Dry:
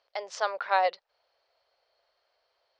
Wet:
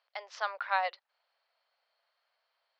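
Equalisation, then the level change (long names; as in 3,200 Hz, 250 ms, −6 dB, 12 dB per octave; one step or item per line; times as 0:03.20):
high-pass filter 1,000 Hz 12 dB per octave
high-frequency loss of the air 160 metres
0.0 dB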